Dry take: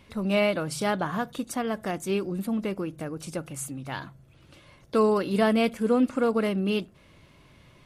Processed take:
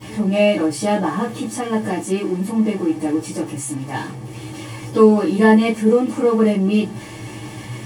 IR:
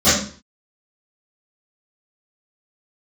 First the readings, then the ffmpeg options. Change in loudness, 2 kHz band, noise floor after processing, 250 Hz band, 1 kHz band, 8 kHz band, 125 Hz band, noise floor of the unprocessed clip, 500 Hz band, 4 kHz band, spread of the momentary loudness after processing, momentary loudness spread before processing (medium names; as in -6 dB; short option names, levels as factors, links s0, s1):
+9.0 dB, +6.5 dB, -34 dBFS, +10.0 dB, +7.0 dB, +8.0 dB, +9.5 dB, -57 dBFS, +8.5 dB, +5.0 dB, 19 LU, 12 LU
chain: -filter_complex "[0:a]aeval=exprs='val(0)+0.5*0.02*sgn(val(0))':c=same[s0];[1:a]atrim=start_sample=2205,atrim=end_sample=4410,asetrate=66150,aresample=44100[s1];[s0][s1]afir=irnorm=-1:irlink=0,volume=0.15"